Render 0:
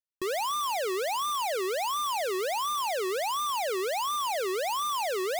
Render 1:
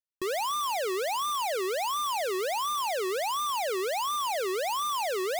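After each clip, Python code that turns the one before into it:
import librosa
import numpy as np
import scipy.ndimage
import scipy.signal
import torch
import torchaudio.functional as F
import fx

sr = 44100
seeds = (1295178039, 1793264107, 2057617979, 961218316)

y = x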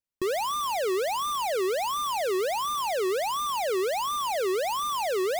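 y = fx.low_shelf(x, sr, hz=380.0, db=9.0)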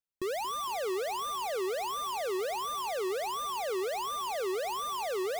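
y = fx.echo_feedback(x, sr, ms=229, feedback_pct=58, wet_db=-16.5)
y = F.gain(torch.from_numpy(y), -6.0).numpy()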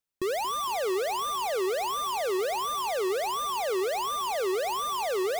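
y = x + 10.0 ** (-23.0 / 20.0) * np.pad(x, (int(77 * sr / 1000.0), 0))[:len(x)]
y = F.gain(torch.from_numpy(y), 4.5).numpy()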